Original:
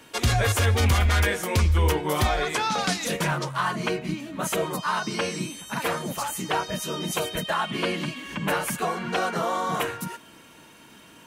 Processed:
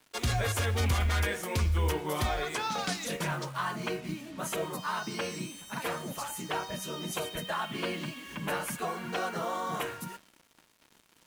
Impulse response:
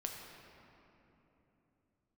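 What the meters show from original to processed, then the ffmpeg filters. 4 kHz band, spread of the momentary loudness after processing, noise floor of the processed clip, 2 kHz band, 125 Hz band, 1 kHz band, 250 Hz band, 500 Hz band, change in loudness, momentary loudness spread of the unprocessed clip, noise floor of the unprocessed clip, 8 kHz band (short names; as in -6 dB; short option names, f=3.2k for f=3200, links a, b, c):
-7.0 dB, 9 LU, -65 dBFS, -7.5 dB, -7.5 dB, -7.5 dB, -7.5 dB, -7.0 dB, -7.0 dB, 9 LU, -51 dBFS, -7.0 dB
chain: -af "bandreject=f=96.02:t=h:w=4,bandreject=f=192.04:t=h:w=4,bandreject=f=288.06:t=h:w=4,bandreject=f=384.08:t=h:w=4,bandreject=f=480.1:t=h:w=4,bandreject=f=576.12:t=h:w=4,bandreject=f=672.14:t=h:w=4,bandreject=f=768.16:t=h:w=4,bandreject=f=864.18:t=h:w=4,bandreject=f=960.2:t=h:w=4,bandreject=f=1.05622k:t=h:w=4,bandreject=f=1.15224k:t=h:w=4,bandreject=f=1.24826k:t=h:w=4,bandreject=f=1.34428k:t=h:w=4,bandreject=f=1.4403k:t=h:w=4,bandreject=f=1.53632k:t=h:w=4,bandreject=f=1.63234k:t=h:w=4,bandreject=f=1.72836k:t=h:w=4,bandreject=f=1.82438k:t=h:w=4,bandreject=f=1.9204k:t=h:w=4,bandreject=f=2.01642k:t=h:w=4,bandreject=f=2.11244k:t=h:w=4,bandreject=f=2.20846k:t=h:w=4,bandreject=f=2.30448k:t=h:w=4,bandreject=f=2.4005k:t=h:w=4,bandreject=f=2.49652k:t=h:w=4,bandreject=f=2.59254k:t=h:w=4,bandreject=f=2.68856k:t=h:w=4,bandreject=f=2.78458k:t=h:w=4,bandreject=f=2.8806k:t=h:w=4,bandreject=f=2.97662k:t=h:w=4,bandreject=f=3.07264k:t=h:w=4,bandreject=f=3.16866k:t=h:w=4,acrusher=bits=6:mix=0:aa=0.5,volume=-7dB"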